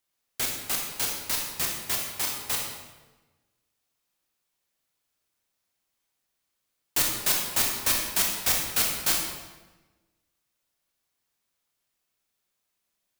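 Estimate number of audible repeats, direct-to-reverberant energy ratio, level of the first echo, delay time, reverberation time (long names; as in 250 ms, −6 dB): no echo audible, −0.5 dB, no echo audible, no echo audible, 1.2 s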